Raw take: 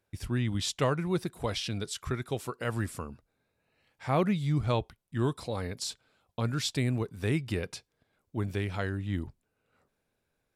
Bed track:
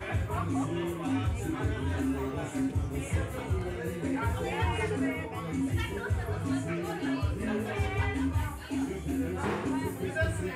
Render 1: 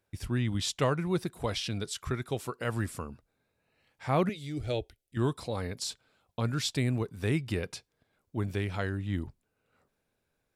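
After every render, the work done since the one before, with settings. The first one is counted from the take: 4.29–5.17 fixed phaser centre 430 Hz, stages 4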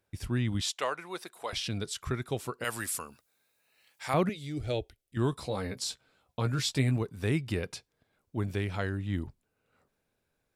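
0.61–1.53 HPF 640 Hz; 2.64–4.14 tilt +4 dB/oct; 5.31–6.97 doubler 15 ms -6.5 dB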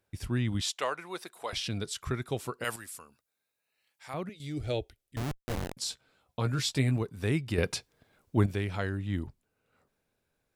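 2.76–4.4 gain -10 dB; 5.16–5.77 Schmitt trigger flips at -29.5 dBFS; 7.58–8.46 gain +7.5 dB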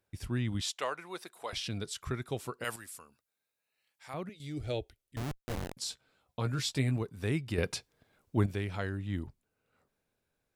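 gain -3 dB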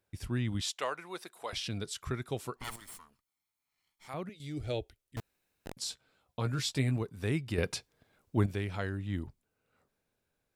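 2.56–4.08 minimum comb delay 0.94 ms; 5.2–5.66 room tone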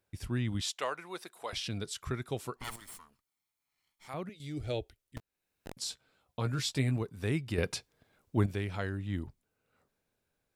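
5.18–5.78 fade in, from -18.5 dB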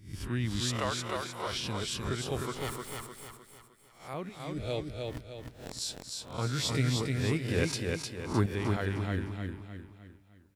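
spectral swells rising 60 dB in 0.41 s; on a send: feedback echo 0.306 s, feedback 43%, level -3.5 dB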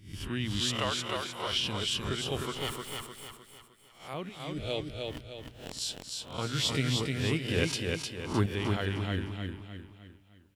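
bell 3000 Hz +11 dB 0.38 oct; notches 60/120 Hz

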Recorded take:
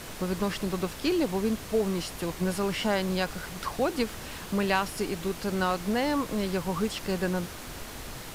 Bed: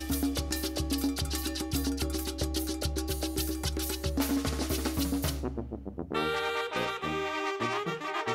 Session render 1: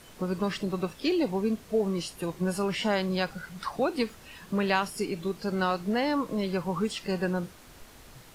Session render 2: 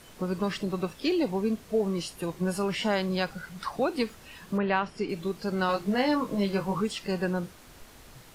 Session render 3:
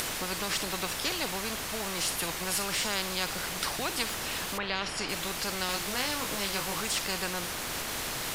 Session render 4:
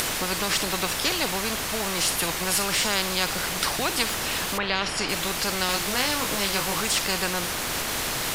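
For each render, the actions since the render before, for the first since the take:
noise print and reduce 11 dB
4.57–5.08 LPF 1700 Hz -> 4500 Hz; 5.67–6.81 doubler 20 ms -3.5 dB
upward compressor, threshold -44 dBFS; spectral compressor 4:1
gain +6.5 dB

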